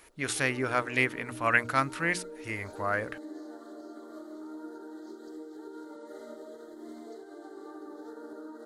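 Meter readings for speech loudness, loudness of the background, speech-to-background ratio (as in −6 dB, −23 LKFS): −29.5 LKFS, −45.0 LKFS, 15.5 dB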